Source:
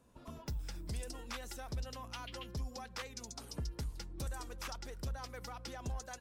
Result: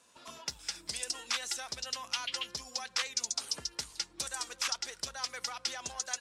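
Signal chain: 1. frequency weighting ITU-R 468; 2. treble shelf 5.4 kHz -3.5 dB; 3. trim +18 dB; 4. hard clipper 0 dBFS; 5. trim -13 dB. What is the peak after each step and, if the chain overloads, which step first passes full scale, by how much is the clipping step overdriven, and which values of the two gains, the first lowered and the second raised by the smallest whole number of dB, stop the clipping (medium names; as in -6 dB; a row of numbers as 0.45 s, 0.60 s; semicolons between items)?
-22.0 dBFS, -23.5 dBFS, -5.5 dBFS, -5.5 dBFS, -18.5 dBFS; nothing clips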